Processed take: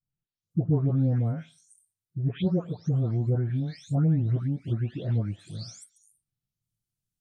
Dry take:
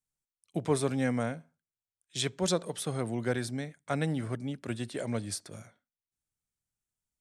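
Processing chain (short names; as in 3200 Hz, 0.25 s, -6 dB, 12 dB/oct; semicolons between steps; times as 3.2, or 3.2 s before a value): spectral delay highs late, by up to 0.503 s; treble ducked by the level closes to 1000 Hz, closed at -30 dBFS; ten-band EQ 125 Hz +9 dB, 500 Hz -6 dB, 1000 Hz -9 dB, 2000 Hz -9 dB, 8000 Hz -6 dB; gain +5 dB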